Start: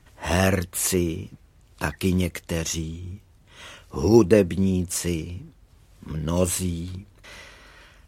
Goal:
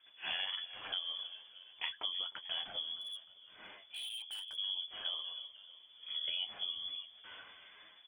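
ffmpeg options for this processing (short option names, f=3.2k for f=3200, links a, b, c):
-filter_complex "[0:a]asplit=5[a][b][c][d][e];[b]adelay=307,afreqshift=43,volume=-21dB[f];[c]adelay=614,afreqshift=86,volume=-26dB[g];[d]adelay=921,afreqshift=129,volume=-31.1dB[h];[e]adelay=1228,afreqshift=172,volume=-36.1dB[i];[a][f][g][h][i]amix=inputs=5:normalize=0,lowpass=f=3k:t=q:w=0.5098,lowpass=f=3k:t=q:w=0.6013,lowpass=f=3k:t=q:w=0.9,lowpass=f=3k:t=q:w=2.563,afreqshift=-3500,flanger=delay=9.5:depth=1.2:regen=41:speed=1.4:shape=sinusoidal,acompressor=threshold=-29dB:ratio=16,asettb=1/sr,asplit=3[j][k][l];[j]atrim=end=3.014[m];[k]atrim=start=3.01:end=4.57,asetpts=PTS-STARTPTS,afade=t=in:d=0.004:c=qsin,afade=t=out:st=1.556:d=0.004:c=qsin,volume=35.5dB,asoftclip=hard,volume=-35.5dB[n];[l]atrim=start=4.566[o];[m][n]acrossfade=d=0.004:c1=hsin:c2=qsin[p];[p][o]acrossfade=d=0.004:c1=qsin:c2=hsin,volume=-5.5dB"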